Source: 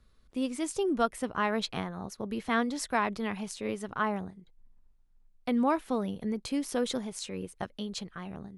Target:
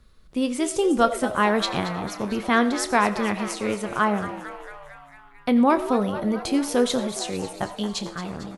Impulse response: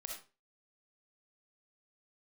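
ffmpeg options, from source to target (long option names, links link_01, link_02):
-filter_complex "[0:a]asplit=8[link_01][link_02][link_03][link_04][link_05][link_06][link_07][link_08];[link_02]adelay=225,afreqshift=130,volume=-13dB[link_09];[link_03]adelay=450,afreqshift=260,volume=-17.2dB[link_10];[link_04]adelay=675,afreqshift=390,volume=-21.3dB[link_11];[link_05]adelay=900,afreqshift=520,volume=-25.5dB[link_12];[link_06]adelay=1125,afreqshift=650,volume=-29.6dB[link_13];[link_07]adelay=1350,afreqshift=780,volume=-33.8dB[link_14];[link_08]adelay=1575,afreqshift=910,volume=-37.9dB[link_15];[link_01][link_09][link_10][link_11][link_12][link_13][link_14][link_15]amix=inputs=8:normalize=0,asplit=2[link_16][link_17];[1:a]atrim=start_sample=2205,adelay=29[link_18];[link_17][link_18]afir=irnorm=-1:irlink=0,volume=-8.5dB[link_19];[link_16][link_19]amix=inputs=2:normalize=0,volume=8dB"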